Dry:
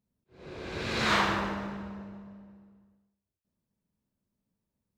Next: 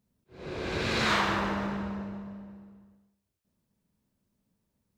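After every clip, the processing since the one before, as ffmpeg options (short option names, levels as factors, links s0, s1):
-af "acompressor=threshold=0.02:ratio=2,volume=2"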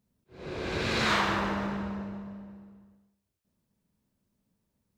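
-af anull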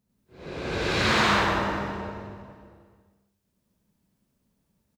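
-af "aecho=1:1:96.21|183.7|242:1|1|0.562"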